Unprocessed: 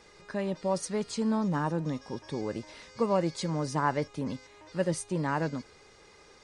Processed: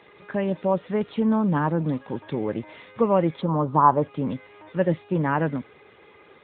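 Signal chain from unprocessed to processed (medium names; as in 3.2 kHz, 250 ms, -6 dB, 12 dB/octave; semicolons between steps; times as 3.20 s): 3.41–4.02 s: resonant high shelf 1.5 kHz -11 dB, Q 3; trim +7 dB; AMR-NB 10.2 kbps 8 kHz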